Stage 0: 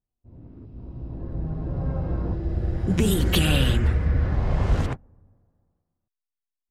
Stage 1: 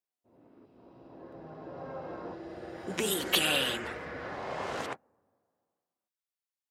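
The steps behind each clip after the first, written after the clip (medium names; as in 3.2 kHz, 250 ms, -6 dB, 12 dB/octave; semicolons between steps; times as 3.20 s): high-pass 490 Hz 12 dB/octave; trim -1 dB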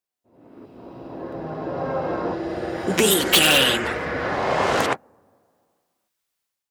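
level rider gain up to 12 dB; in parallel at -3.5 dB: integer overflow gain 10.5 dB; on the sum: trim -1 dB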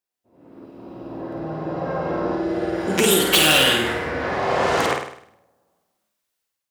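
flutter echo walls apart 8.8 m, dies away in 0.63 s; trim -1 dB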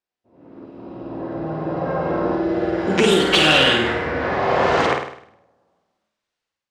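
distance through air 120 m; trim +3 dB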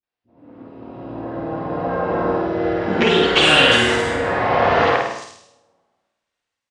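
three bands offset in time lows, mids, highs 30/380 ms, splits 350/5200 Hz; resampled via 22.05 kHz; gated-style reverb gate 290 ms falling, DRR 4.5 dB; trim +1 dB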